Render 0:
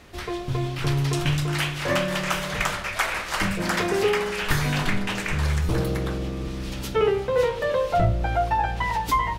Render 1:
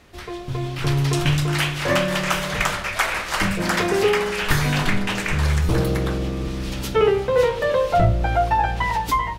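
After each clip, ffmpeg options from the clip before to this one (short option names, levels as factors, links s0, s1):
-af "dynaudnorm=f=300:g=5:m=2.24,volume=0.75"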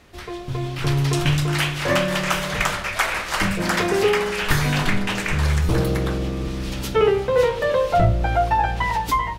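-af anull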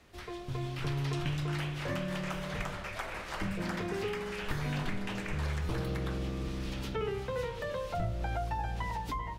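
-filter_complex "[0:a]acrossover=split=270|770|4600[s0][s1][s2][s3];[s0]acompressor=threshold=0.0708:ratio=4[s4];[s1]acompressor=threshold=0.0224:ratio=4[s5];[s2]acompressor=threshold=0.0251:ratio=4[s6];[s3]acompressor=threshold=0.00398:ratio=4[s7];[s4][s5][s6][s7]amix=inputs=4:normalize=0,volume=0.355"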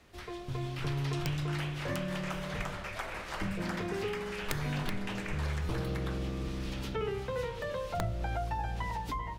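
-af "aeval=exprs='(mod(12.6*val(0)+1,2)-1)/12.6':c=same"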